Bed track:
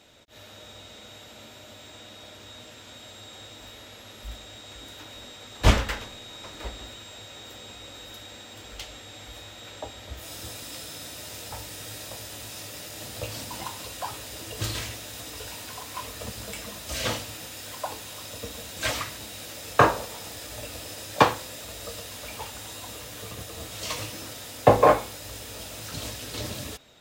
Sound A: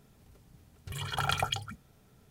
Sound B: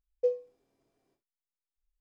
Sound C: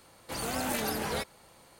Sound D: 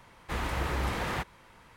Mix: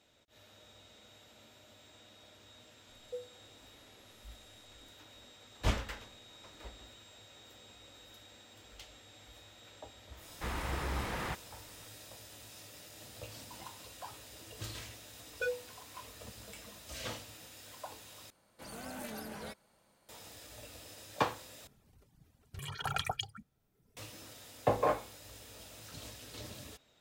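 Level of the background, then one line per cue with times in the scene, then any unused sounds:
bed track -13 dB
2.89 s: add B -15 dB + one-bit delta coder 64 kbps, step -45 dBFS
10.12 s: add D -5.5 dB
15.18 s: add B + wavefolder -28.5 dBFS
18.30 s: replace with C -13.5 dB + small resonant body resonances 210/610/1500 Hz, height 6 dB
21.67 s: replace with A -4.5 dB + reverb removal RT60 1.3 s

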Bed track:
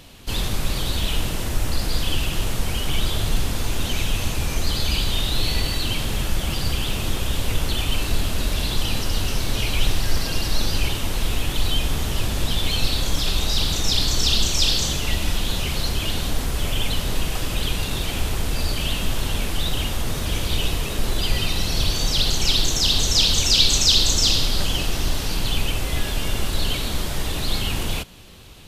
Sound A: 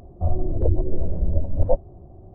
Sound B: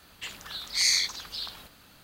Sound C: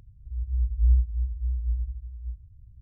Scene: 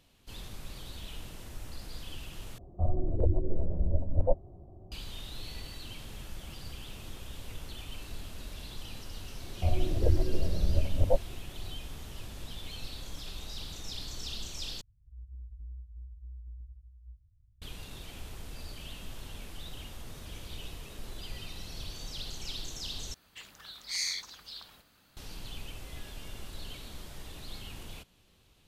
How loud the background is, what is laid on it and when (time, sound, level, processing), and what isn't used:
bed track -20 dB
2.58 s: replace with A -6.5 dB
9.41 s: add A -5.5 dB
14.81 s: replace with C -15 dB + compression, threshold -26 dBFS
23.14 s: replace with B -9.5 dB

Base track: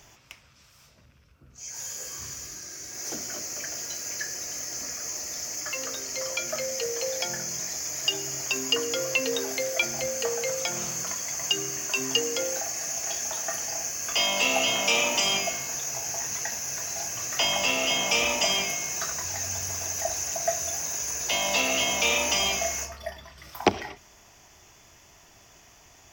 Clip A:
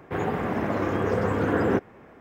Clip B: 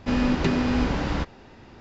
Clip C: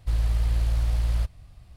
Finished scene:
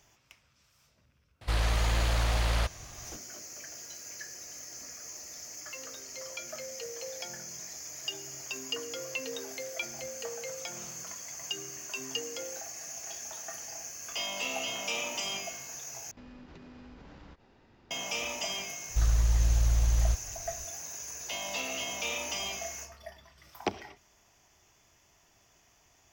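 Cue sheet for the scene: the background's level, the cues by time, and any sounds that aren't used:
base track -10.5 dB
1.41 s: add C -1.5 dB + overdrive pedal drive 22 dB, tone 3.5 kHz, clips at -15 dBFS
16.11 s: replace with B -13.5 dB + compression 5:1, threshold -35 dBFS
18.89 s: add C -1.5 dB
not used: A

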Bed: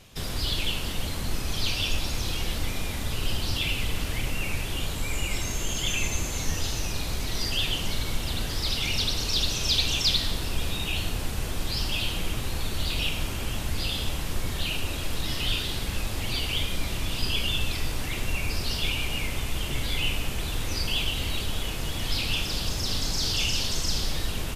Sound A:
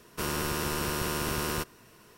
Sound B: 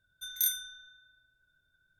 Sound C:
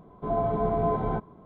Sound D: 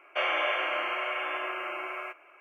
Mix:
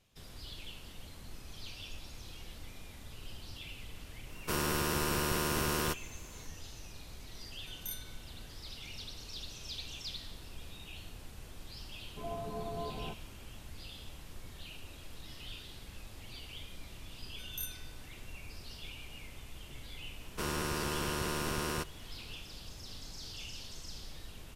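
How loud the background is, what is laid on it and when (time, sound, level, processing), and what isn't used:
bed -19 dB
4.30 s: add A -1.5 dB
7.45 s: add B -14 dB
11.94 s: add C -14.5 dB
17.17 s: add B -12.5 dB
20.20 s: add A -4 dB + Bessel low-pass 11 kHz
not used: D

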